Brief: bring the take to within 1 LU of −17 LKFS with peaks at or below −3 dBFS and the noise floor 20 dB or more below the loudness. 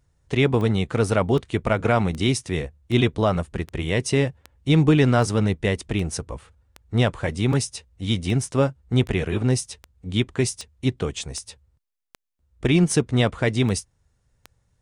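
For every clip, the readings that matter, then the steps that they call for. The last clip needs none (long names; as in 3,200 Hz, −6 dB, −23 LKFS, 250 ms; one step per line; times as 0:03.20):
number of clicks 19; integrated loudness −23.0 LKFS; sample peak −6.0 dBFS; target loudness −17.0 LKFS
→ click removal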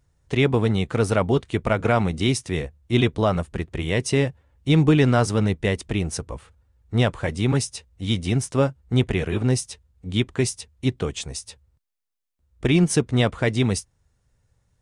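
number of clicks 0; integrated loudness −23.0 LKFS; sample peak −6.0 dBFS; target loudness −17.0 LKFS
→ level +6 dB
brickwall limiter −3 dBFS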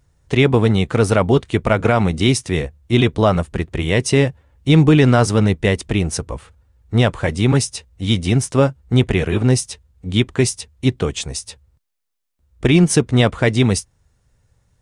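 integrated loudness −17.0 LKFS; sample peak −3.0 dBFS; background noise floor −62 dBFS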